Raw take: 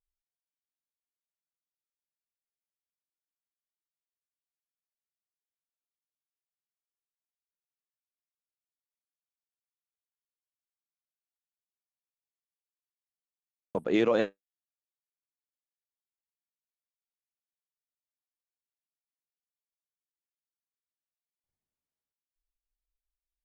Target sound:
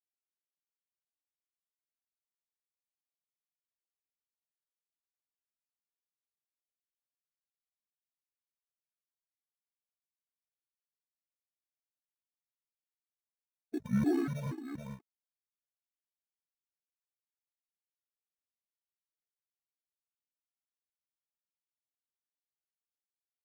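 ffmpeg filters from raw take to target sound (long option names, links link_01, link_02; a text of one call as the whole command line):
ffmpeg -i in.wav -filter_complex "[0:a]highshelf=frequency=2300:gain=-6.5,bandreject=frequency=640:width=12,asetrate=27781,aresample=44100,atempo=1.5874,aecho=1:1:289|296|722:0.531|0.531|0.376,asplit=2[link_01][link_02];[link_02]acrusher=samples=22:mix=1:aa=0.000001,volume=-8dB[link_03];[link_01][link_03]amix=inputs=2:normalize=0,aeval=exprs='sgn(val(0))*max(abs(val(0))-0.00211,0)':channel_layout=same,afftfilt=real='re*gt(sin(2*PI*2.1*pts/sr)*(1-2*mod(floor(b*sr/1024/220),2)),0)':imag='im*gt(sin(2*PI*2.1*pts/sr)*(1-2*mod(floor(b*sr/1024/220),2)),0)':win_size=1024:overlap=0.75,volume=-5dB" out.wav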